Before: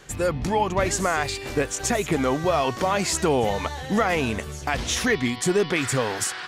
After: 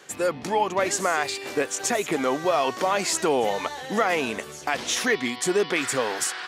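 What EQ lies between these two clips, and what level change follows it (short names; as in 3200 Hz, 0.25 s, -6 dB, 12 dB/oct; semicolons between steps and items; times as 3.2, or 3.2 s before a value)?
HPF 280 Hz 12 dB/oct; 0.0 dB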